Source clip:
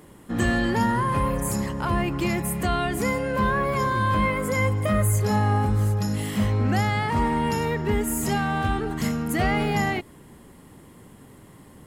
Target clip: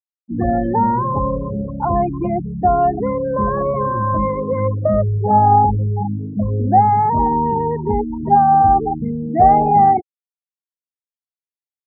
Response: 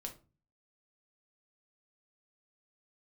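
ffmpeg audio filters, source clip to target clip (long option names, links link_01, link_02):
-af "afftfilt=real='re*gte(hypot(re,im),0.112)':imag='im*gte(hypot(re,im),0.112)':win_size=1024:overlap=0.75,lowpass=frequency=780:width_type=q:width=6.6,volume=3dB"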